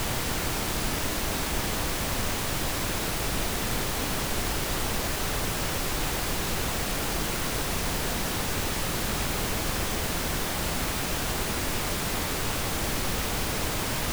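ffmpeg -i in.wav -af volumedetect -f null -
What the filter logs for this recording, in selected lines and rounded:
mean_volume: -28.3 dB
max_volume: -15.4 dB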